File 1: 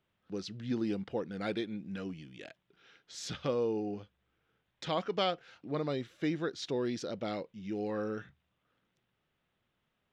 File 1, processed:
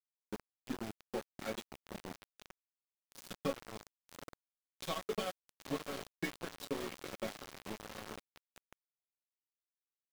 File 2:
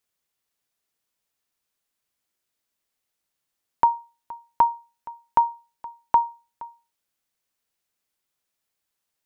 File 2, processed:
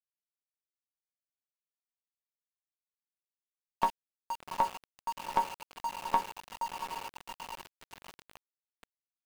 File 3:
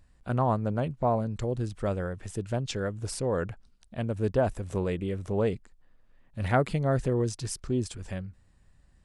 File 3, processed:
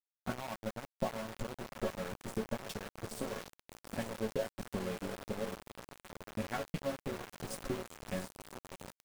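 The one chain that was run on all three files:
coarse spectral quantiser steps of 15 dB; expander -55 dBFS; compression 3:1, threshold -31 dBFS; transient shaper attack +11 dB, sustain -6 dB; chord resonator F#3 minor, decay 0.2 s; echo that smears into a reverb 774 ms, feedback 66%, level -7 dB; small samples zeroed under -44 dBFS; trim +6 dB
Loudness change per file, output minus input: -7.5 LU, -12.0 LU, -11.0 LU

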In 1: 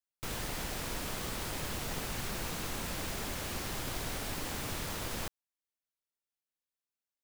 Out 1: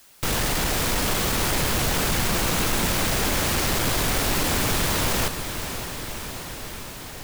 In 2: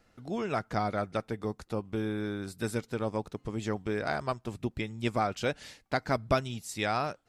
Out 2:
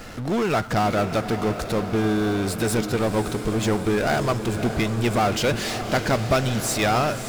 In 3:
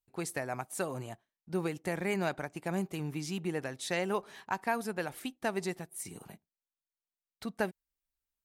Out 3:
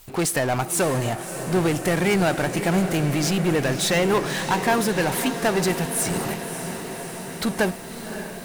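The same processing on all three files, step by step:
power-law waveshaper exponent 0.5; echo that smears into a reverb 589 ms, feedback 73%, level -10 dB; normalise loudness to -23 LUFS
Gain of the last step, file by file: +8.5 dB, +2.0 dB, +6.5 dB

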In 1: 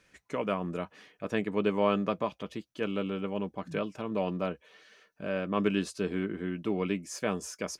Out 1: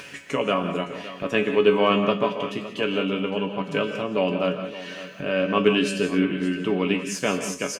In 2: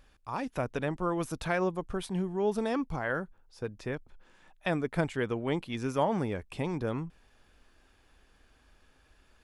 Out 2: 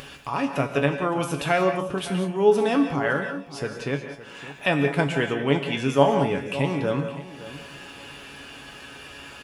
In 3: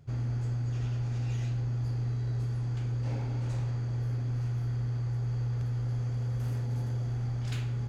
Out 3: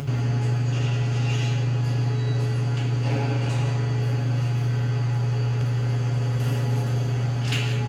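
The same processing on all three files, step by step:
high-pass 110 Hz 12 dB/octave; peaking EQ 2.8 kHz +9.5 dB 0.29 oct; upward compressor, threshold -36 dBFS; feedback comb 140 Hz, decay 0.24 s, harmonics all, mix 80%; feedback delay 564 ms, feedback 27%, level -15.5 dB; gated-style reverb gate 210 ms rising, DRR 7.5 dB; normalise loudness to -24 LUFS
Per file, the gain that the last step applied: +15.5 dB, +15.5 dB, +20.5 dB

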